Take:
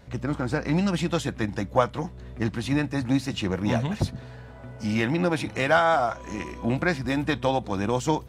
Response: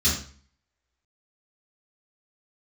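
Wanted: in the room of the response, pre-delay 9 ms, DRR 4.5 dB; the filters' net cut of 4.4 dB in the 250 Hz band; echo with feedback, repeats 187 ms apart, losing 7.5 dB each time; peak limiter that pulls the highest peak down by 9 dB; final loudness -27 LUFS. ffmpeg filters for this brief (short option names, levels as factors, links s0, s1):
-filter_complex "[0:a]equalizer=f=250:t=o:g=-6,alimiter=limit=0.141:level=0:latency=1,aecho=1:1:187|374|561|748|935:0.422|0.177|0.0744|0.0312|0.0131,asplit=2[s0][s1];[1:a]atrim=start_sample=2205,adelay=9[s2];[s1][s2]afir=irnorm=-1:irlink=0,volume=0.141[s3];[s0][s3]amix=inputs=2:normalize=0,volume=0.891"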